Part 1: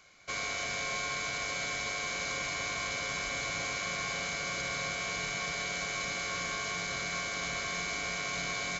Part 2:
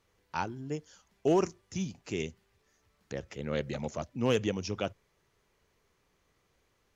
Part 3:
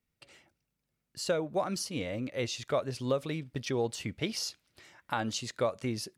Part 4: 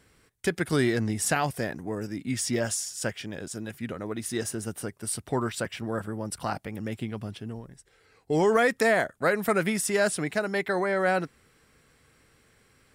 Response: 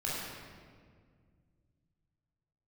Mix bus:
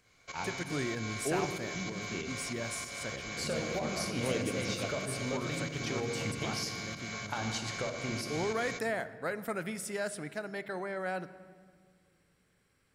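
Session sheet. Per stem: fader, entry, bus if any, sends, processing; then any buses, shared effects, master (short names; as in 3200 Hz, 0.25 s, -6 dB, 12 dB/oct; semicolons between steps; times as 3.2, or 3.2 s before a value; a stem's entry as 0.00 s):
-6.0 dB, 0.00 s, no send, pump 95 bpm, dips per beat 2, -11 dB, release 0.178 s
-8.5 dB, 0.00 s, send -11.5 dB, dry
-4.0 dB, 2.20 s, send -6 dB, compressor, threshold -32 dBFS, peak gain reduction 8 dB
-12.0 dB, 0.00 s, send -18 dB, dry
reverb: on, RT60 1.9 s, pre-delay 17 ms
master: dry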